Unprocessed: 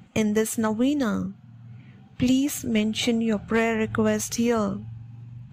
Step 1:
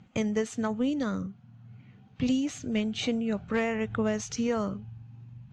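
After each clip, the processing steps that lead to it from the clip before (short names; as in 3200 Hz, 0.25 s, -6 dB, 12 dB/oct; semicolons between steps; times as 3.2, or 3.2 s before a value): Chebyshev low-pass 6200 Hz, order 3; gain -5.5 dB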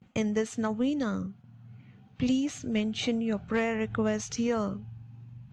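gate with hold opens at -47 dBFS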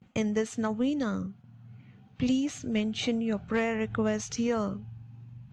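nothing audible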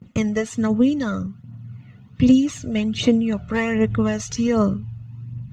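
low shelf 100 Hz +8.5 dB; phaser 1.3 Hz, delay 1.6 ms, feedback 50%; notch comb 790 Hz; gain +6.5 dB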